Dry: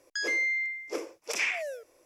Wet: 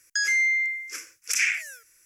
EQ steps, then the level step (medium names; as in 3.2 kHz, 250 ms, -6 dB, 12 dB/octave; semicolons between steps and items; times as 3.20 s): FFT filter 110 Hz 0 dB, 810 Hz -28 dB, 1.5 kHz +8 dB, 2.4 kHz +5 dB, 3.7 kHz -1 dB, 6.4 kHz +12 dB; dynamic bell 380 Hz, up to -7 dB, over -56 dBFS, Q 1.6; 0.0 dB